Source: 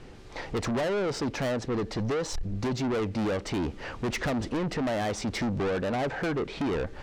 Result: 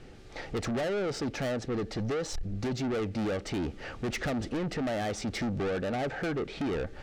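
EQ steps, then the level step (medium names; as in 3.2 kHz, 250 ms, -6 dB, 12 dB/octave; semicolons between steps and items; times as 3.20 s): band-stop 1 kHz, Q 5.2; -2.5 dB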